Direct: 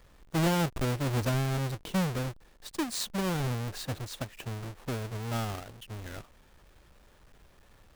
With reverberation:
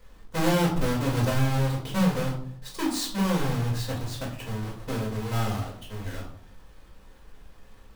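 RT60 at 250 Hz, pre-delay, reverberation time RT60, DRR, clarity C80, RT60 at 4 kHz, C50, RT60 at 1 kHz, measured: 0.75 s, 4 ms, 0.60 s, -4.0 dB, 10.5 dB, 0.35 s, 7.0 dB, 0.55 s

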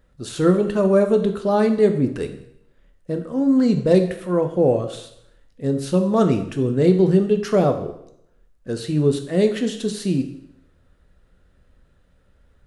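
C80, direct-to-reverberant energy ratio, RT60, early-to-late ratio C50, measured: 12.5 dB, 6.0 dB, 0.75 s, 10.0 dB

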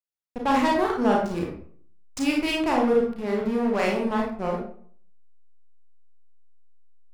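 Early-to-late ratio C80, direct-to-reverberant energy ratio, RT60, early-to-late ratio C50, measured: 8.0 dB, -1.5 dB, 0.50 s, 3.5 dB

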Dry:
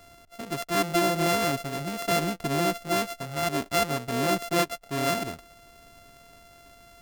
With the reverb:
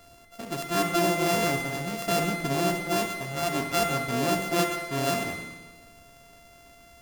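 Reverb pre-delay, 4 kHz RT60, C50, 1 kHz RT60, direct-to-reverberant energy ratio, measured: 14 ms, 1.3 s, 6.0 dB, 1.3 s, 3.5 dB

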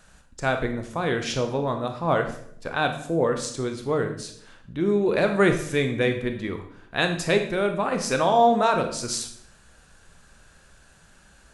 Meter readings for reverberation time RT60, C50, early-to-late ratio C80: 0.65 s, 8.5 dB, 12.0 dB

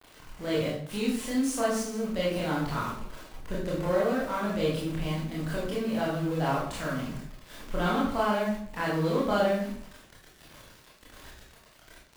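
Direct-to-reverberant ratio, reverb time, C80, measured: -6.5 dB, 0.60 s, 6.0 dB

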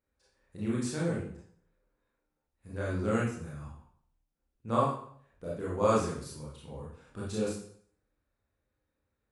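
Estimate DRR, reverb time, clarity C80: -6.5 dB, 0.60 s, 6.5 dB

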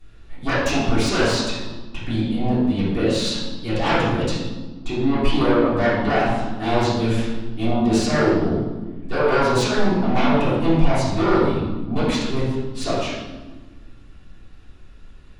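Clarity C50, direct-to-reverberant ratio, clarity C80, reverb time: -1.0 dB, -15.0 dB, 2.5 dB, 1.4 s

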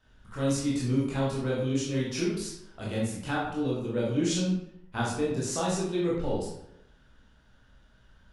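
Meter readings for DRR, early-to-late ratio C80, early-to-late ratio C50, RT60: -6.5 dB, 5.0 dB, 1.5 dB, 0.85 s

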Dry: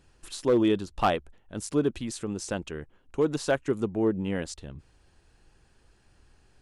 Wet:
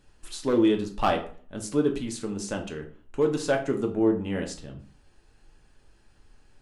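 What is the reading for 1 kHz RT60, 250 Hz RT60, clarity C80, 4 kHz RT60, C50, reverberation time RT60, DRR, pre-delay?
0.45 s, 0.50 s, 15.0 dB, 0.30 s, 10.5 dB, 0.45 s, 2.5 dB, 3 ms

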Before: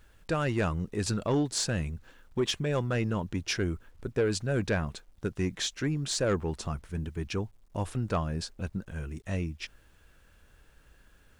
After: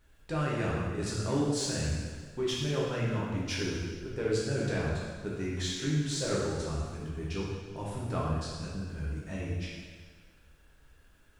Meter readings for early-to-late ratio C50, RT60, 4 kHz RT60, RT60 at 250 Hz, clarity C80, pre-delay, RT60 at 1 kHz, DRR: -1.0 dB, 1.6 s, 1.5 s, 1.6 s, 1.5 dB, 5 ms, 1.6 s, -6.0 dB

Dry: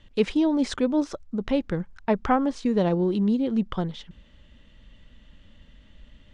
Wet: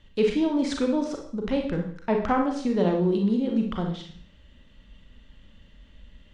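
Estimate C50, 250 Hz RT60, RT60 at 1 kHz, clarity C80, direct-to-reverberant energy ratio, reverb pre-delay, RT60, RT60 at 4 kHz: 5.5 dB, 0.55 s, 0.55 s, 10.0 dB, 2.0 dB, 33 ms, 0.55 s, 0.55 s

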